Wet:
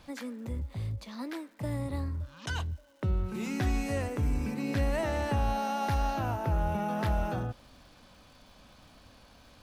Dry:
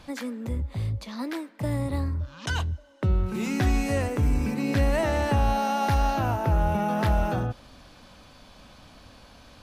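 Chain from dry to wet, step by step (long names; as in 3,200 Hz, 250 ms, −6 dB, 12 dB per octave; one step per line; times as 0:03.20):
surface crackle 380 per second −49 dBFS
level −6 dB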